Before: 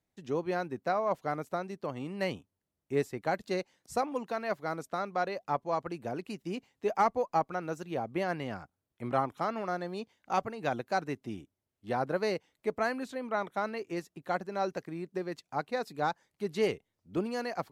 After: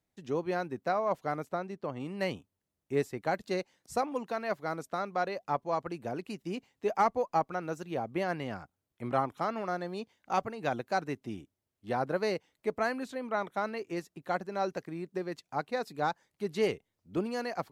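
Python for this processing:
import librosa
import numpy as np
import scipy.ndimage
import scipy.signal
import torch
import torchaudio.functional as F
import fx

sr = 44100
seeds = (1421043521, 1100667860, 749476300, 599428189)

y = fx.high_shelf(x, sr, hz=fx.line((1.45, 5900.0), (1.99, 4000.0)), db=-9.0, at=(1.45, 1.99), fade=0.02)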